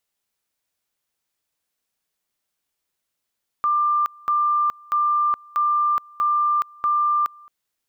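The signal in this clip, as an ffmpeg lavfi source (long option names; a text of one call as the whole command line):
ffmpeg -f lavfi -i "aevalsrc='pow(10,(-16.5-26.5*gte(mod(t,0.64),0.42))/20)*sin(2*PI*1190*t)':duration=3.84:sample_rate=44100" out.wav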